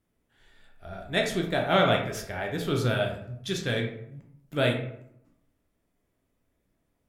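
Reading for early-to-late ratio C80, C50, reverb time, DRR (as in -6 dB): 9.0 dB, 6.0 dB, 0.75 s, 0.5 dB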